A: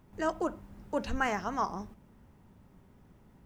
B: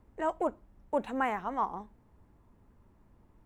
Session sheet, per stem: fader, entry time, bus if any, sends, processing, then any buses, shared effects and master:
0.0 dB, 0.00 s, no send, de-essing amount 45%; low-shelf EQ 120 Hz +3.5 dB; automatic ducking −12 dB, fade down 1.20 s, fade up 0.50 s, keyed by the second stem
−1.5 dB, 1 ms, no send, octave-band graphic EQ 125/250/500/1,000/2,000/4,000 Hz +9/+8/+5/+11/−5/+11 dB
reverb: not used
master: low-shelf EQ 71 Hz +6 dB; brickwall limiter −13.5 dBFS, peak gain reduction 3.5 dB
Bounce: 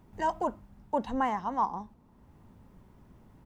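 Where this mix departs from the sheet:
stem B −1.5 dB → −8.0 dB
master: missing low-shelf EQ 71 Hz +6 dB

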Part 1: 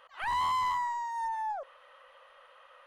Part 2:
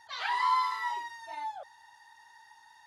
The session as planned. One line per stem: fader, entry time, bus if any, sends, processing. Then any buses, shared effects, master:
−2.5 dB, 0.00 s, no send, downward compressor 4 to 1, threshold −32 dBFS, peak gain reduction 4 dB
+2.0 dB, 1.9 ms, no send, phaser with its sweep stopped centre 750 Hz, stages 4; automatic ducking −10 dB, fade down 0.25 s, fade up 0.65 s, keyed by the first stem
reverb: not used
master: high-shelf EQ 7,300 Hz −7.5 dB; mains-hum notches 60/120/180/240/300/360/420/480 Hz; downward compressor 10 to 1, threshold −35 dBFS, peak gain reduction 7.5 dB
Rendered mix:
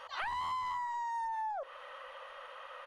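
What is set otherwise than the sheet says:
stem 1 −2.5 dB → +8.5 dB
stem 2: polarity flipped

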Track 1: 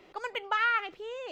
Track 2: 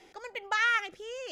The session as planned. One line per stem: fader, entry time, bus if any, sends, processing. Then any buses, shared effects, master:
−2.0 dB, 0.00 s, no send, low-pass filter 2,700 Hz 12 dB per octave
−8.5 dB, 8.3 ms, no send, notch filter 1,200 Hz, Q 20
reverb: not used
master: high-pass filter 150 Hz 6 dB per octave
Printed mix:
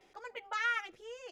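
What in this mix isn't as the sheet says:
stem 1 −2.0 dB → −12.0 dB
master: missing high-pass filter 150 Hz 6 dB per octave

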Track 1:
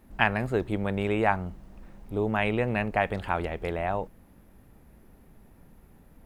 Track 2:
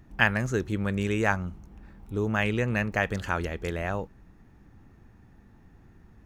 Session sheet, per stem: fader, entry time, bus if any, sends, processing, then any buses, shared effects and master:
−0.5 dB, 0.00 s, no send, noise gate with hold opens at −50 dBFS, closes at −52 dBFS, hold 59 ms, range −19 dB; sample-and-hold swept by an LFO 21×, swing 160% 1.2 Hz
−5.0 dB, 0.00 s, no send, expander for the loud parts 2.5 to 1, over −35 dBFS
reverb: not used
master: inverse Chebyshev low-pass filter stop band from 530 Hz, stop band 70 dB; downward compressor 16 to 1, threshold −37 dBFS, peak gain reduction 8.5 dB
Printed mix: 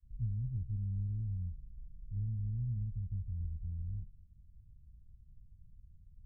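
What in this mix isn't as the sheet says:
stem 1: missing sample-and-hold swept by an LFO 21×, swing 160% 1.2 Hz
master: missing downward compressor 16 to 1, threshold −37 dBFS, peak gain reduction 8.5 dB

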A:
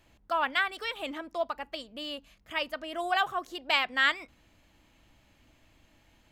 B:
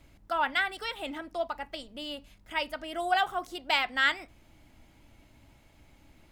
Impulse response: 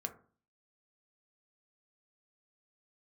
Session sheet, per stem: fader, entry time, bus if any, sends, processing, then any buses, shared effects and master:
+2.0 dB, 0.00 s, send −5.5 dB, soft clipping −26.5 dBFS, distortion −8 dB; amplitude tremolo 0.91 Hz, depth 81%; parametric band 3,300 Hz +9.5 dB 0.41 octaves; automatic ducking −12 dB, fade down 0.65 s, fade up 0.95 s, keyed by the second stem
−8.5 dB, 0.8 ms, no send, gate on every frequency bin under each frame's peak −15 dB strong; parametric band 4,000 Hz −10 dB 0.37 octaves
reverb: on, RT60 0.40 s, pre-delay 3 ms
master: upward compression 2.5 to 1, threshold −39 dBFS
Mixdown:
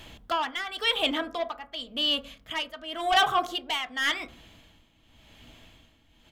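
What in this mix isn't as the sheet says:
stem A +2.0 dB → +13.0 dB
master: missing upward compression 2.5 to 1, threshold −39 dBFS

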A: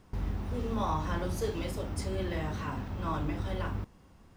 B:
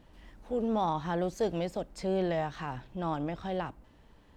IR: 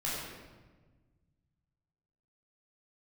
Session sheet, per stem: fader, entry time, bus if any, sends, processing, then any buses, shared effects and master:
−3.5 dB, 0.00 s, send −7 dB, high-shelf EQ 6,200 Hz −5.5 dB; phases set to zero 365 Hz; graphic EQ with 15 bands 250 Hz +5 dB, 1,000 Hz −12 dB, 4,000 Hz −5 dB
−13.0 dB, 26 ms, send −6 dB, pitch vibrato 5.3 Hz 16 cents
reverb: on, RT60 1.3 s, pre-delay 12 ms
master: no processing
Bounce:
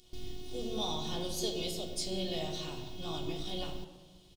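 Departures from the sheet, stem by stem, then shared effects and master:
stem A: send off
master: extra high shelf with overshoot 2,500 Hz +13 dB, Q 3

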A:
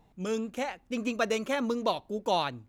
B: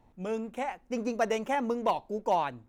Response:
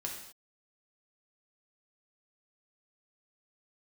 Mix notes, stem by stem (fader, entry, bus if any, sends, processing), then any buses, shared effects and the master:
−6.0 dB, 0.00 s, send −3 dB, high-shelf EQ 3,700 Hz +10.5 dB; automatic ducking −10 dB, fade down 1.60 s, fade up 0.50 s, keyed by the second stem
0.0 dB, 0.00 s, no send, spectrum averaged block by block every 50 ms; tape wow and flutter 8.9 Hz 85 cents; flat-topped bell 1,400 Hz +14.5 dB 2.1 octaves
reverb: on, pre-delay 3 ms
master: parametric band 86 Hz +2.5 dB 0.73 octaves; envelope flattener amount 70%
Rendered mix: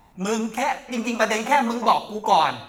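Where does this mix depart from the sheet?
stem A −6.0 dB → +1.5 dB
master: missing envelope flattener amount 70%

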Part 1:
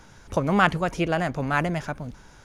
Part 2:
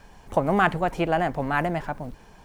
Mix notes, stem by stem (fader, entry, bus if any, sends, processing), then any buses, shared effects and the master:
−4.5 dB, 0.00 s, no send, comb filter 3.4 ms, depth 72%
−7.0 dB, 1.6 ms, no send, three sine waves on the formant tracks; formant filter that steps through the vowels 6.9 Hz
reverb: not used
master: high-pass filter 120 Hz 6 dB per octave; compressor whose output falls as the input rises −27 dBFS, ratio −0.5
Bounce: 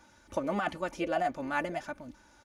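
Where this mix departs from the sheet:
stem 1 −4.5 dB → −10.5 dB
stem 2: polarity flipped

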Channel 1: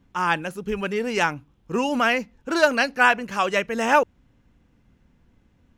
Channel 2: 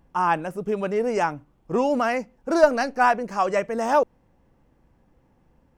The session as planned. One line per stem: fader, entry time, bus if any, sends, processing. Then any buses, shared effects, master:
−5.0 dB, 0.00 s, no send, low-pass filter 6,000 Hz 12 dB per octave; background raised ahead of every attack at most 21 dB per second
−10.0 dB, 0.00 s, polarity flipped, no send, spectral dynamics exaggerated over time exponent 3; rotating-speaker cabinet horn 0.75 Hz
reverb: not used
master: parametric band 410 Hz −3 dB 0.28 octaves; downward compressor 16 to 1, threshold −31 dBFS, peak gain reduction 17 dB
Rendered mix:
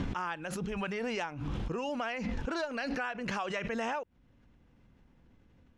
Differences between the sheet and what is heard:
stem 2: missing spectral dynamics exaggerated over time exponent 3
master: missing parametric band 410 Hz −3 dB 0.28 octaves

